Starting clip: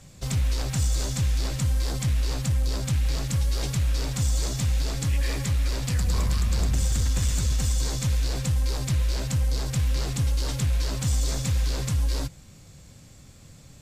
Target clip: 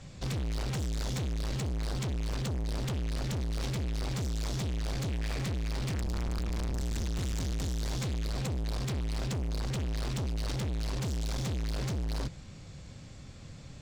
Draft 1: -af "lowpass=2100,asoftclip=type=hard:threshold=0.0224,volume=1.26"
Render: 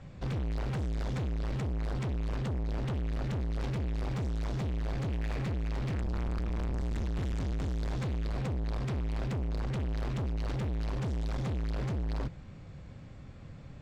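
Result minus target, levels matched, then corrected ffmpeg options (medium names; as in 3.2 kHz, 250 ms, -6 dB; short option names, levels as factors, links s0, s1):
4 kHz band -8.0 dB
-af "lowpass=5100,asoftclip=type=hard:threshold=0.0224,volume=1.26"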